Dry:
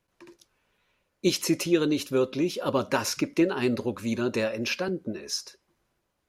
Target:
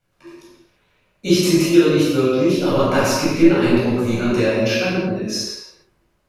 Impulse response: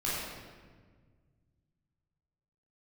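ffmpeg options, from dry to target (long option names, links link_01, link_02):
-filter_complex "[0:a]asplit=3[link_01][link_02][link_03];[link_01]afade=type=out:start_time=2.53:duration=0.02[link_04];[link_02]aeval=exprs='0.398*(cos(1*acos(clip(val(0)/0.398,-1,1)))-cos(1*PI/2))+0.01*(cos(6*acos(clip(val(0)/0.398,-1,1)))-cos(6*PI/2))':channel_layout=same,afade=type=in:start_time=2.53:duration=0.02,afade=type=out:start_time=4.35:duration=0.02[link_05];[link_03]afade=type=in:start_time=4.35:duration=0.02[link_06];[link_04][link_05][link_06]amix=inputs=3:normalize=0[link_07];[1:a]atrim=start_sample=2205,afade=type=out:start_time=0.4:duration=0.01,atrim=end_sample=18081[link_08];[link_07][link_08]afir=irnorm=-1:irlink=0,volume=2dB"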